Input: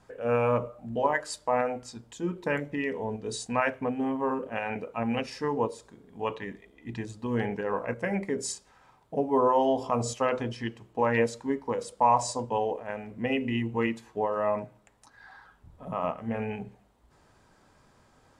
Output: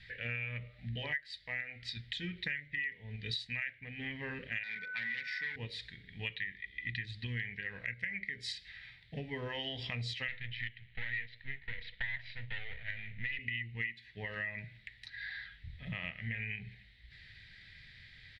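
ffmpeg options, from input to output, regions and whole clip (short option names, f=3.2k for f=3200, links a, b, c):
-filter_complex "[0:a]asettb=1/sr,asplit=3[a][b][c];[a]atrim=end=4.634[d];[b]atrim=start=4.63:end=5.56,asetpts=PTS-STARTPTS,afade=t=in:d=0.004:c=qsin,afade=t=out:st=0.926:d=0.004:c=qsin,aeval=exprs='val(0)+0.0158*sin(2*PI*1500*n/s)':c=same,asoftclip=type=hard:threshold=-29dB,highpass=f=170:w=0.5412,highpass=f=170:w=1.3066,equalizer=f=260:t=q:w=4:g=-7,equalizer=f=670:t=q:w=4:g=-8,equalizer=f=1k:t=q:w=4:g=9,equalizer=f=1.9k:t=q:w=4:g=5,equalizer=f=2.8k:t=q:w=4:g=-9,equalizer=f=4.1k:t=q:w=4:g=-7,lowpass=f=9.1k:w=0.5412,lowpass=f=9.1k:w=1.3066[e];[c]atrim=start=5.556[f];[d][e]acrossfade=d=0.004:c1=hsin:c2=qsin[g];[g][f]acrossfade=d=0.004:c1=qsin:c2=hsin,asettb=1/sr,asplit=3[h][i][j];[h]atrim=end=10.284[k];[i]atrim=start=10.28:end=13.39,asetpts=PTS-STARTPTS,afade=t=in:d=0.004:c=qsin,afade=t=out:st=3.106:d=0.004:c=qsin,aeval=exprs='if(lt(val(0),0),0.251*val(0),val(0))':c=same,lowpass=f=3.4k:w=0.5412,lowpass=f=3.4k:w=1.3066,equalizer=f=300:w=1.5:g=-8.5[l];[j]atrim=start=13.386[m];[k][l]acrossfade=d=0.004:c1=hsin:c2=qsin[n];[n][m]acrossfade=d=0.004:c1=qsin:c2=hsin,firequalizer=gain_entry='entry(110,0);entry(260,-19);entry(1100,-29);entry(1900,15);entry(2700,6);entry(3900,12);entry(6500,-19)':delay=0.05:min_phase=1,acompressor=threshold=-42dB:ratio=8,volume=6dB"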